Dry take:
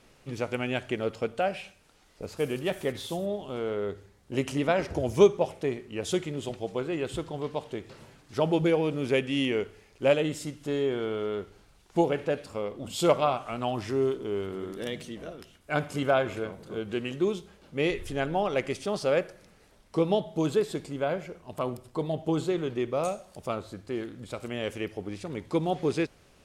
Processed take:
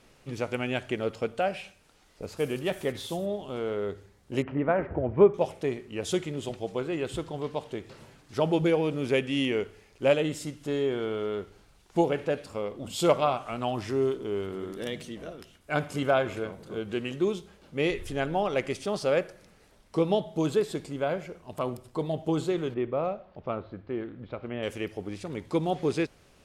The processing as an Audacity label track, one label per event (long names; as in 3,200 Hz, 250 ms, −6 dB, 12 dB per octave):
4.420000	5.340000	low-pass filter 1,900 Hz 24 dB per octave
22.740000	24.630000	Gaussian smoothing sigma 3 samples